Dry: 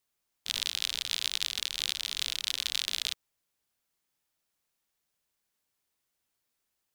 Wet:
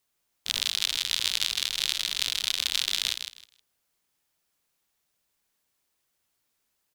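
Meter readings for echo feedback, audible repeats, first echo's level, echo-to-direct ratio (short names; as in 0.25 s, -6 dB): 20%, 2, -7.5 dB, -7.5 dB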